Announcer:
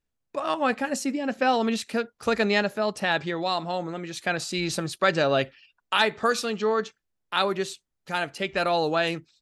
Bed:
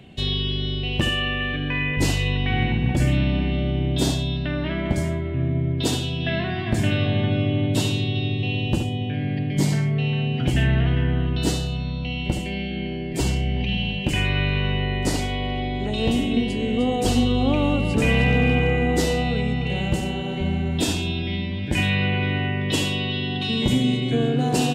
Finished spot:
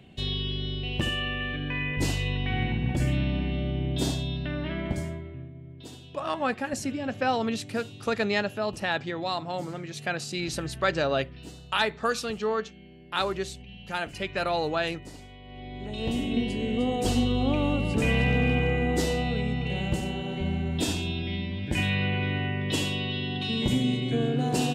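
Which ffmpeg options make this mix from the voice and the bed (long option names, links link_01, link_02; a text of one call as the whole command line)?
ffmpeg -i stem1.wav -i stem2.wav -filter_complex "[0:a]adelay=5800,volume=-3.5dB[link_01];[1:a]volume=10.5dB,afade=type=out:start_time=4.81:duration=0.7:silence=0.16788,afade=type=in:start_time=15.44:duration=0.98:silence=0.149624[link_02];[link_01][link_02]amix=inputs=2:normalize=0" out.wav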